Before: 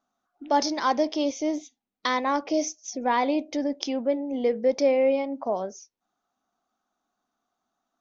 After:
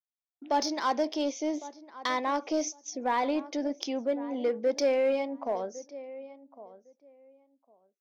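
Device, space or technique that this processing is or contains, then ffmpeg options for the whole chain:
parallel distortion: -filter_complex "[0:a]highpass=210,agate=range=-33dB:threshold=-41dB:ratio=3:detection=peak,asettb=1/sr,asplit=3[a][b][c];[a]atrim=end=4.764[d];[b]atrim=start=4.76:end=5.33,asetpts=PTS-STARTPTS,afade=t=in:d=0.004:c=qsin,afade=t=out:st=0.566:d=0.004:c=qsin,equalizer=f=5.8k:t=o:w=2.4:g=5[e];[c]atrim=start=5.326[f];[d][e]acrossfade=d=0.004:c1=hsin:c2=qsin[g];[g][f]acrossfade=d=0.004:c1=qsin:c2=hsin,asplit=2[h][i];[i]adelay=1106,lowpass=f=1.6k:p=1,volume=-17dB,asplit=2[j][k];[k]adelay=1106,lowpass=f=1.6k:p=1,volume=0.18[l];[h][j][l]amix=inputs=3:normalize=0,asplit=2[m][n];[n]asoftclip=type=hard:threshold=-23dB,volume=-6.5dB[o];[m][o]amix=inputs=2:normalize=0,volume=-6.5dB"

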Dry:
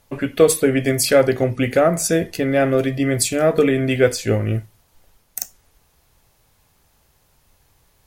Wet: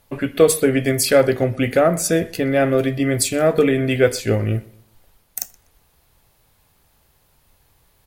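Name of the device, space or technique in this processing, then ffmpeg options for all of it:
exciter from parts: -filter_complex "[0:a]asplit=2[a][b];[b]highpass=f=4.8k:w=0.5412,highpass=f=4.8k:w=1.3066,asoftclip=type=tanh:threshold=-27dB,highpass=3.4k,volume=-9dB[c];[a][c]amix=inputs=2:normalize=0,asplit=2[d][e];[e]adelay=123,lowpass=f=4.7k:p=1,volume=-21.5dB,asplit=2[f][g];[g]adelay=123,lowpass=f=4.7k:p=1,volume=0.37,asplit=2[h][i];[i]adelay=123,lowpass=f=4.7k:p=1,volume=0.37[j];[d][f][h][j]amix=inputs=4:normalize=0"

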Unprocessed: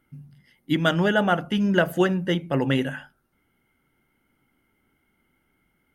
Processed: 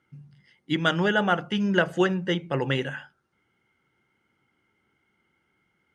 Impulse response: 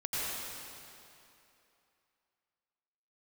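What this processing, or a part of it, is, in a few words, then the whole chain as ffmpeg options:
car door speaker: -af "highpass=100,equalizer=f=160:t=q:w=4:g=-3,equalizer=f=260:t=q:w=4:g=-9,equalizer=f=640:t=q:w=4:g=-5,lowpass=f=7.7k:w=0.5412,lowpass=f=7.7k:w=1.3066"

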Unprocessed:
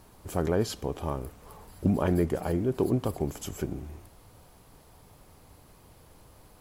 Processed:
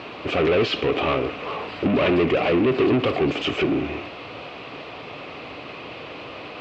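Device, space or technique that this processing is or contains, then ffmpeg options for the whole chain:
overdrive pedal into a guitar cabinet: -filter_complex "[0:a]asplit=2[a][b];[b]highpass=f=720:p=1,volume=34dB,asoftclip=type=tanh:threshold=-11dB[c];[a][c]amix=inputs=2:normalize=0,lowpass=f=3.2k:p=1,volume=-6dB,highpass=79,equalizer=f=90:t=q:w=4:g=-5,equalizer=f=190:t=q:w=4:g=-5,equalizer=f=290:t=q:w=4:g=3,equalizer=f=890:t=q:w=4:g=-9,equalizer=f=1.6k:t=q:w=4:g=-6,equalizer=f=2.6k:t=q:w=4:g=9,lowpass=f=3.8k:w=0.5412,lowpass=f=3.8k:w=1.3066"

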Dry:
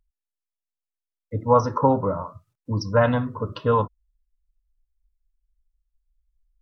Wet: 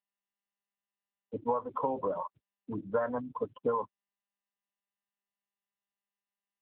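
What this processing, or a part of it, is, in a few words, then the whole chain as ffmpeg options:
voicemail: -af "afftfilt=real='re*gte(hypot(re,im),0.1)':imag='im*gte(hypot(re,im),0.1)':win_size=1024:overlap=0.75,highpass=310,lowpass=3k,acompressor=threshold=-26dB:ratio=12" -ar 8000 -c:a libopencore_amrnb -b:a 6700

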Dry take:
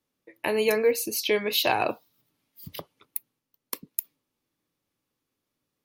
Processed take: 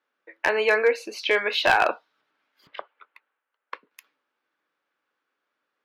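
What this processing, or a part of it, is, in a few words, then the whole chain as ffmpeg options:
megaphone: -filter_complex "[0:a]highpass=560,lowpass=2.7k,equalizer=f=1.5k:t=o:w=0.43:g=10,asoftclip=type=hard:threshold=-17dB,asettb=1/sr,asplit=3[a][b][c];[a]atrim=end=2.674[d];[b]atrim=start=2.67:end=3.91,asetpts=PTS-STARTPTS,afade=t=in:d=0.004:c=qsin,afade=t=out:st=1.236:d=0.004:c=qsin,acrossover=split=410 3500:gain=0.2 1 0.0794[e][f][g];[e][f][g]amix=inputs=3:normalize=0[h];[c]atrim=start=3.906[i];[d][h]acrossfade=d=0.004:c1=hsin:c2=qsin[j];[j][i]acrossfade=d=0.004:c1=qsin:c2=hsin,volume=6dB"

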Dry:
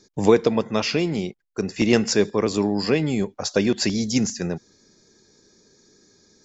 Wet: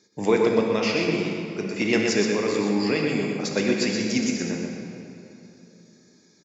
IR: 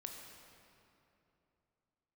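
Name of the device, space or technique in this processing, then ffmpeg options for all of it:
PA in a hall: -filter_complex "[0:a]highpass=150,equalizer=f=2.2k:t=o:w=0.64:g=7,aecho=1:1:123:0.531[a];[1:a]atrim=start_sample=2205[b];[a][b]afir=irnorm=-1:irlink=0"

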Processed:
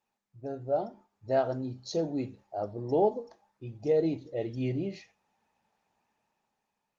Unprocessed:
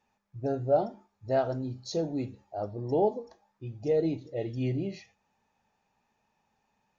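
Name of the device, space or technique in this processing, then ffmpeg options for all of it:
video call: -af "highpass=f=140:p=1,dynaudnorm=f=270:g=7:m=8dB,volume=-7dB" -ar 48000 -c:a libopus -b:a 24k

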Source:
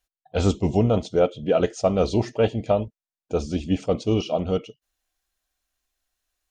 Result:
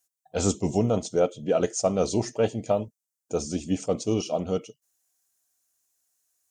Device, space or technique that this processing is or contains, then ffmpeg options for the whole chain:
budget condenser microphone: -af "highpass=110,highshelf=f=5k:t=q:w=1.5:g=11,volume=-3dB"

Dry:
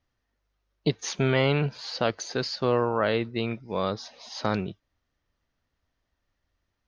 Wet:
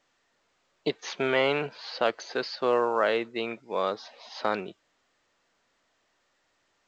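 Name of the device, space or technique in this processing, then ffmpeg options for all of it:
telephone: -af "highpass=380,lowpass=3.6k,volume=1.5dB" -ar 16000 -c:a pcm_alaw

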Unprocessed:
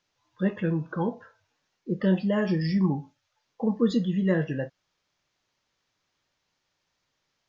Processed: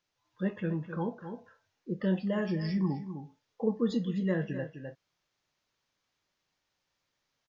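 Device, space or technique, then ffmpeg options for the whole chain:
ducked delay: -filter_complex "[0:a]asettb=1/sr,asplit=3[a][b][c];[a]atrim=end=3.004[d];[b]atrim=start=3:end=3.81,asetpts=PTS-STARTPTS,afade=t=in:d=0.004:c=qsin,afade=t=out:st=0.806:d=0.004:c=qsin,equalizer=f=440:t=o:w=0.26:g=8.5[e];[c]atrim=start=3.806[f];[d][e]acrossfade=d=0.004:c1=hsin:c2=qsin[g];[g][f]acrossfade=d=0.004:c1=qsin:c2=hsin,asplit=3[h][i][j];[i]adelay=256,volume=-2.5dB[k];[j]apad=whole_len=341162[l];[k][l]sidechaincompress=threshold=-37dB:ratio=4:attack=16:release=390[m];[h][m]amix=inputs=2:normalize=0,volume=-6dB"

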